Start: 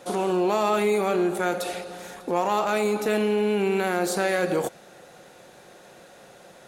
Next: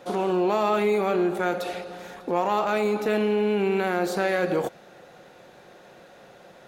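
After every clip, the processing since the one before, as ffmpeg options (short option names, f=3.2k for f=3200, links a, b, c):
-af "equalizer=f=9.3k:w=0.83:g=-11.5"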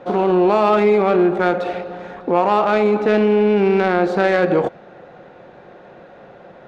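-af "adynamicsmooth=sensitivity=1:basefreq=2.2k,volume=8.5dB"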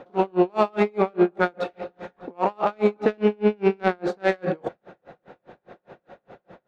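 -af "aeval=exprs='val(0)*pow(10,-38*(0.5-0.5*cos(2*PI*4.9*n/s))/20)':c=same"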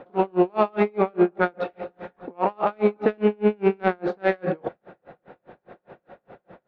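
-af "lowpass=3.1k"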